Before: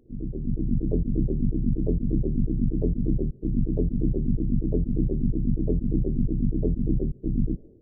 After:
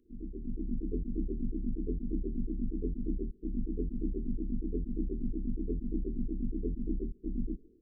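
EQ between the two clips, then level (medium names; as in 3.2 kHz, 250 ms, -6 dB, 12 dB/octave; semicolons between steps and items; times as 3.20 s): Butterworth band-stop 650 Hz, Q 1.5; static phaser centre 310 Hz, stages 4; -7.5 dB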